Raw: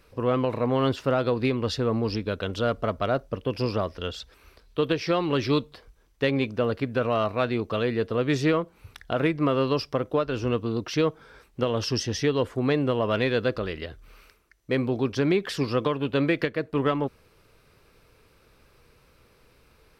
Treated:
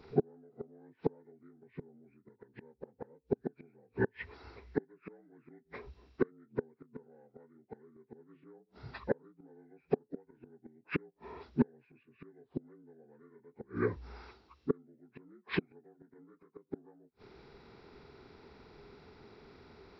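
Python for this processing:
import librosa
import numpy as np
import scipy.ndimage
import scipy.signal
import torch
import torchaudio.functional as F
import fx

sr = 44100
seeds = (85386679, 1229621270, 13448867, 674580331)

y = fx.partial_stretch(x, sr, pct=75)
y = fx.gate_flip(y, sr, shuts_db=-22.0, range_db=-41)
y = fx.small_body(y, sr, hz=(240.0, 420.0, 3900.0), ring_ms=25, db=8)
y = y * 10.0 ** (1.5 / 20.0)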